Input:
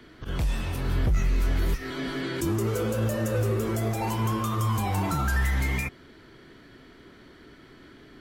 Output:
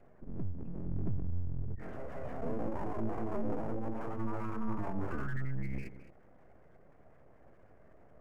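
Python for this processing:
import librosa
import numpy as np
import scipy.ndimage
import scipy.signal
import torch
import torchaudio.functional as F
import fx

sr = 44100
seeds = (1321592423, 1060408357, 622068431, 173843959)

y = fx.notch(x, sr, hz=890.0, q=15.0)
y = fx.spec_gate(y, sr, threshold_db=-15, keep='strong')
y = fx.highpass(y, sr, hz=56.0, slope=6)
y = fx.spacing_loss(y, sr, db_at_10k=42)
y = y + 10.0 ** (-14.5 / 20.0) * np.pad(y, (int(214 * sr / 1000.0), 0))[:len(y)]
y = np.abs(y)
y = fx.peak_eq(y, sr, hz=3700.0, db=-13.0, octaves=0.94)
y = y * 10.0 ** (-4.0 / 20.0)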